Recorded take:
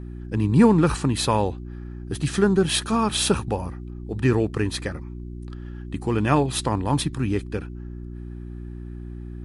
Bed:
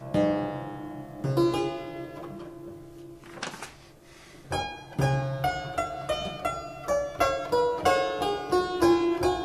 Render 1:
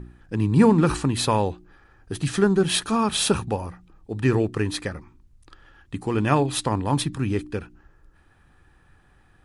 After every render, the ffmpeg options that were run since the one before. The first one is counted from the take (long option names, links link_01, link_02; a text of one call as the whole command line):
ffmpeg -i in.wav -af "bandreject=frequency=60:width_type=h:width=4,bandreject=frequency=120:width_type=h:width=4,bandreject=frequency=180:width_type=h:width=4,bandreject=frequency=240:width_type=h:width=4,bandreject=frequency=300:width_type=h:width=4,bandreject=frequency=360:width_type=h:width=4" out.wav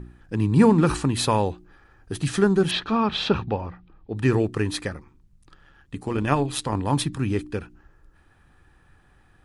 ffmpeg -i in.wav -filter_complex "[0:a]asettb=1/sr,asplit=3[link_01][link_02][link_03];[link_01]atrim=end=2.714[link_04];[link_02]atrim=start=2.71:end=4.17,asetpts=PTS-STARTPTS,afade=type=in:duration=0.004:curve=qsin,afade=type=out:start_time=1.456:duration=0.004:curve=qsin,lowpass=frequency=4100:width=0.5412,lowpass=frequency=4100:width=1.3066[link_05];[link_03]atrim=start=4.166[link_06];[link_04][link_05]acrossfade=duration=0.004:curve1=hsin:curve2=qsin[link_07];[link_07][link_06]acrossfade=duration=0.004:curve1=qsin:curve2=hsin,asettb=1/sr,asplit=3[link_08][link_09][link_10];[link_08]atrim=end=4.944[link_11];[link_09]atrim=start=4.94:end=6.75,asetpts=PTS-STARTPTS,afade=type=in:duration=0.004:curve=qsin,afade=type=out:start_time=1.806:duration=0.004:curve=qsin,tremolo=f=140:d=0.519[link_12];[link_10]atrim=start=6.746[link_13];[link_11][link_12]acrossfade=duration=0.004:curve1=hsin:curve2=qsin[link_14];[link_14][link_13]acrossfade=duration=0.004:curve1=qsin:curve2=hsin" out.wav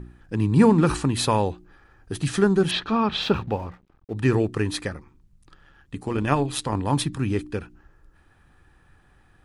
ffmpeg -i in.wav -filter_complex "[0:a]asettb=1/sr,asplit=3[link_01][link_02][link_03];[link_01]atrim=end=3.224[link_04];[link_02]atrim=start=3.22:end=4.14,asetpts=PTS-STARTPTS,afade=type=in:duration=0.004:curve=qsin,afade=type=out:start_time=0.916:duration=0.004:curve=qsin,aeval=exprs='sgn(val(0))*max(abs(val(0))-0.00266,0)':channel_layout=same[link_05];[link_03]atrim=start=4.136[link_06];[link_04][link_05]acrossfade=duration=0.004:curve1=hsin:curve2=qsin[link_07];[link_07][link_06]acrossfade=duration=0.004:curve1=qsin:curve2=hsin" out.wav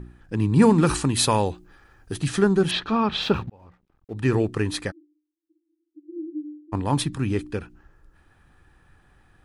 ffmpeg -i in.wav -filter_complex "[0:a]asettb=1/sr,asplit=3[link_01][link_02][link_03];[link_01]atrim=end=0.624[link_04];[link_02]atrim=start=0.62:end=2.14,asetpts=PTS-STARTPTS,afade=type=in:duration=0.004:curve=qsin,afade=type=out:start_time=1.516:duration=0.004:curve=qsin,highshelf=frequency=4200:gain=7.5[link_05];[link_03]atrim=start=2.136[link_06];[link_04][link_05]acrossfade=duration=0.004:curve1=hsin:curve2=qsin[link_07];[link_07][link_06]acrossfade=duration=0.004:curve1=qsin:curve2=hsin,asplit=3[link_08][link_09][link_10];[link_08]afade=type=out:start_time=4.9:duration=0.02[link_11];[link_09]asuperpass=centerf=320:order=12:qfactor=6.3,afade=type=in:start_time=4.9:duration=0.02,afade=type=out:start_time=6.72:duration=0.02[link_12];[link_10]afade=type=in:start_time=6.72:duration=0.02[link_13];[link_11][link_12][link_13]amix=inputs=3:normalize=0,asplit=2[link_14][link_15];[link_14]atrim=end=3.5,asetpts=PTS-STARTPTS,afade=type=out:start_time=3.496:duration=0.004:curve=hsin[link_16];[link_15]atrim=start=3.5,asetpts=PTS-STARTPTS,afade=type=in:duration=0.9[link_17];[link_16][link_17]concat=n=2:v=0:a=1" out.wav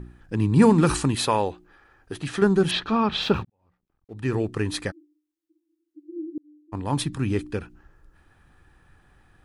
ffmpeg -i in.wav -filter_complex "[0:a]asettb=1/sr,asplit=3[link_01][link_02][link_03];[link_01]atrim=end=1.154[link_04];[link_02]atrim=start=1.15:end=2.42,asetpts=PTS-STARTPTS,afade=type=in:duration=0.004:curve=qsin,afade=type=out:start_time=1.266:duration=0.004:curve=qsin,bass=frequency=250:gain=-8,treble=frequency=4000:gain=-8[link_05];[link_03]atrim=start=2.416[link_06];[link_04][link_05]acrossfade=duration=0.004:curve1=hsin:curve2=qsin[link_07];[link_07][link_06]acrossfade=duration=0.004:curve1=qsin:curve2=hsin,asplit=3[link_08][link_09][link_10];[link_08]atrim=end=3.45,asetpts=PTS-STARTPTS,afade=type=out:start_time=3.446:duration=0.004:curve=hsin[link_11];[link_09]atrim=start=3.45:end=6.38,asetpts=PTS-STARTPTS,afade=type=in:duration=1.39,afade=type=out:start_time=2.926:duration=0.004:curve=hsin[link_12];[link_10]atrim=start=6.38,asetpts=PTS-STARTPTS,afade=type=in:duration=1.03:curve=qsin[link_13];[link_11][link_12][link_13]concat=n=3:v=0:a=1" out.wav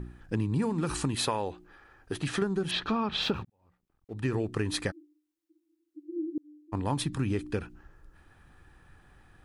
ffmpeg -i in.wav -af "acompressor=threshold=-25dB:ratio=16" out.wav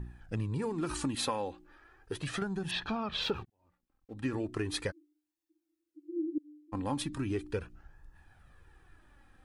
ffmpeg -i in.wav -af "flanger=delay=1.1:depth=2.7:regen=30:speed=0.37:shape=sinusoidal" out.wav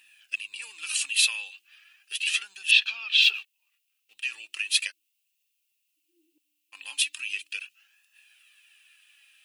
ffmpeg -i in.wav -af "highpass=frequency=2700:width_type=q:width=8.9,crystalizer=i=3.5:c=0" out.wav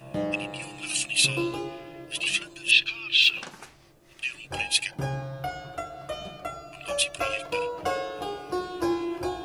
ffmpeg -i in.wav -i bed.wav -filter_complex "[1:a]volume=-5.5dB[link_01];[0:a][link_01]amix=inputs=2:normalize=0" out.wav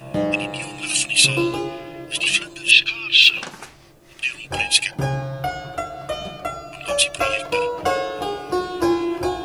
ffmpeg -i in.wav -af "volume=7.5dB,alimiter=limit=-1dB:level=0:latency=1" out.wav